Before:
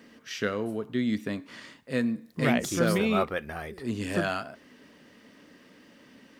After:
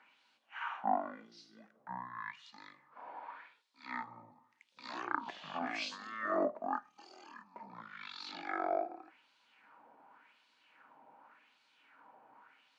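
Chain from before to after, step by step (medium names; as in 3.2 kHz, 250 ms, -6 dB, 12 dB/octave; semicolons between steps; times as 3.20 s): ladder high-pass 400 Hz, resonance 30%; speed mistake 15 ips tape played at 7.5 ips; LFO band-pass sine 0.88 Hz 710–4100 Hz; trim +9 dB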